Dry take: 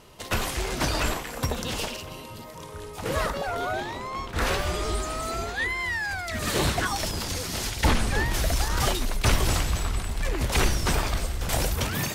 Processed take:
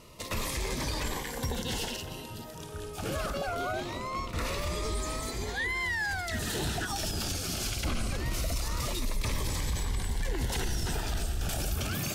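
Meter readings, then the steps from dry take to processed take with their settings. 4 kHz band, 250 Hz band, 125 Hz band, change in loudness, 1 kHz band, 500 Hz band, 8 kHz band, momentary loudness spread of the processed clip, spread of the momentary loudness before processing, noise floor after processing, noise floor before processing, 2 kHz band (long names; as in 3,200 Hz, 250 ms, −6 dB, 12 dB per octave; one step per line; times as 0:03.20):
−5.0 dB, −5.0 dB, −5.5 dB, −6.0 dB, −7.0 dB, −6.0 dB, −4.5 dB, 4 LU, 8 LU, −42 dBFS, −40 dBFS, −5.5 dB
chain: brickwall limiter −22.5 dBFS, peak gain reduction 11.5 dB
phaser whose notches keep moving one way falling 0.23 Hz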